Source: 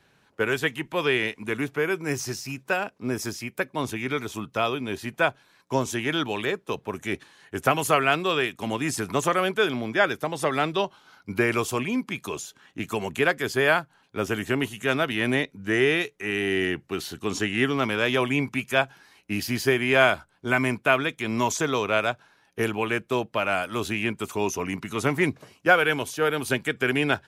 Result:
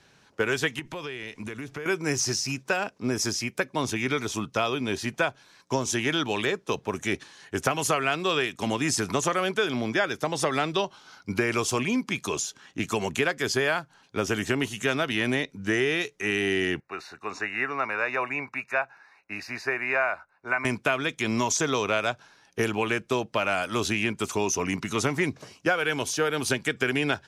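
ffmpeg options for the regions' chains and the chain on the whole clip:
-filter_complex "[0:a]asettb=1/sr,asplit=3[a][b][c];[a]atrim=end=0.794[d];[b]atrim=start=0.79:end=1.86,asetpts=PTS-STARTPTS,afade=t=in:d=0.004:c=qsin,afade=t=out:st=1.066:d=0.004:c=qsin,lowshelf=f=71:g=12,acompressor=threshold=-34dB:ratio=16:attack=3.2:release=140:knee=1:detection=peak[e];[c]atrim=start=1.856[f];[d][e]acrossfade=d=0.004:c1=hsin:c2=qsin[g];[g][f]acrossfade=d=0.004:c1=qsin:c2=hsin,asettb=1/sr,asplit=3[h][i][j];[h]atrim=end=16.804[k];[i]atrim=start=16.8:end=20.65,asetpts=PTS-STARTPTS,afade=t=in:d=0.004:c=qsin,afade=t=out:st=3.846:d=0.004:c=qsin,asuperstop=centerf=3200:order=12:qfactor=4.4,acrossover=split=600 2400:gain=0.126 1 0.0891[l][m][n];[l][m][n]amix=inputs=3:normalize=0[o];[j]atrim=start=20.646[p];[k][o]acrossfade=d=0.004:c1=hsin:c2=qsin[q];[q][p]acrossfade=d=0.004:c1=qsin:c2=hsin,lowpass=11k,equalizer=f=5.7k:t=o:w=0.84:g=7.5,acompressor=threshold=-24dB:ratio=5,volume=2.5dB"

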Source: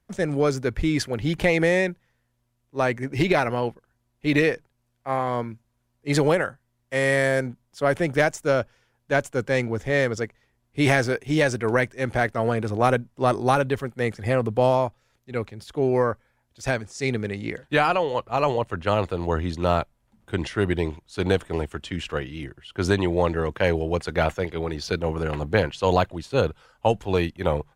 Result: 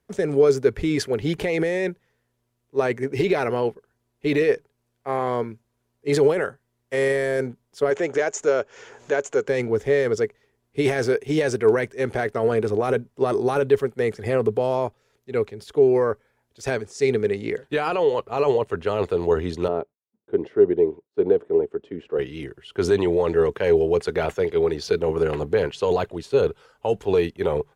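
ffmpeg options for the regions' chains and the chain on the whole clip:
-filter_complex "[0:a]asettb=1/sr,asplit=3[a][b][c];[a]atrim=end=7.904[d];[b]atrim=start=7.9:end=9.48,asetpts=PTS-STARTPTS,afade=t=in:d=0.004:c=qsin,afade=t=out:st=1.576:d=0.004:c=qsin,bass=f=250:g=-13,treble=f=4k:g=-13,acompressor=mode=upward:threshold=-26dB:ratio=2.5:attack=3.2:release=140:knee=2.83:detection=peak,lowpass=f=6.8k:t=q:w=7.5[e];[c]atrim=start=9.476[f];[d][e]acrossfade=d=0.004:c1=hsin:c2=qsin[g];[g][f]acrossfade=d=0.004:c1=qsin:c2=hsin,asettb=1/sr,asplit=3[h][i][j];[h]atrim=end=19.684[k];[i]atrim=start=19.68:end=22.19,asetpts=PTS-STARTPTS,afade=t=in:d=0.004:c=qsin,afade=t=out:st=2.506:d=0.004:c=qsin,bandpass=f=370:t=q:w=1.1,agate=range=-33dB:threshold=-57dB:ratio=3:release=100:detection=peak[l];[j]atrim=start=22.186[m];[k][l]acrossfade=d=0.004:c1=hsin:c2=qsin[n];[n][m]acrossfade=d=0.004:c1=qsin:c2=hsin,lowshelf=f=64:g=-9.5,alimiter=limit=-15.5dB:level=0:latency=1:release=10,equalizer=f=420:w=4.4:g=13"

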